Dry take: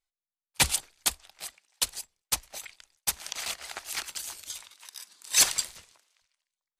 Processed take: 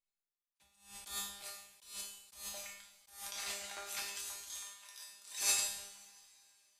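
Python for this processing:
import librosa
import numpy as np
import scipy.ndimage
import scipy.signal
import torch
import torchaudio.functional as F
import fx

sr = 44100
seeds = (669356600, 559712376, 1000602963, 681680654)

y = fx.comb_fb(x, sr, f0_hz=200.0, decay_s=0.59, harmonics='all', damping=0.0, mix_pct=90)
y = fx.rev_double_slope(y, sr, seeds[0], early_s=0.63, late_s=3.1, knee_db=-22, drr_db=1.0)
y = fx.attack_slew(y, sr, db_per_s=120.0)
y = F.gain(torch.from_numpy(y), 5.0).numpy()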